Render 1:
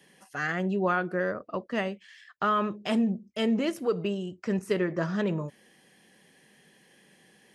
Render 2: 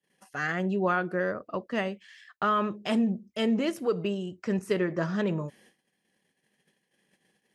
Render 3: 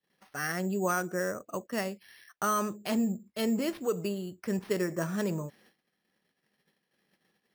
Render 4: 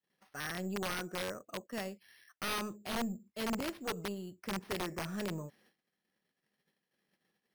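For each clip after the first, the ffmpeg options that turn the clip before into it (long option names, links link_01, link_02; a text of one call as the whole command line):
ffmpeg -i in.wav -af "agate=range=-27dB:threshold=-57dB:ratio=16:detection=peak" out.wav
ffmpeg -i in.wav -af "acrusher=samples=6:mix=1:aa=0.000001,volume=-3dB" out.wav
ffmpeg -i in.wav -af "aeval=exprs='0.141*(cos(1*acos(clip(val(0)/0.141,-1,1)))-cos(1*PI/2))+0.0141*(cos(2*acos(clip(val(0)/0.141,-1,1)))-cos(2*PI/2))+0.0501*(cos(3*acos(clip(val(0)/0.141,-1,1)))-cos(3*PI/2))+0.0178*(cos(5*acos(clip(val(0)/0.141,-1,1)))-cos(5*PI/2))+0.002*(cos(7*acos(clip(val(0)/0.141,-1,1)))-cos(7*PI/2))':channel_layout=same,aeval=exprs='(mod(28.2*val(0)+1,2)-1)/28.2':channel_layout=same" out.wav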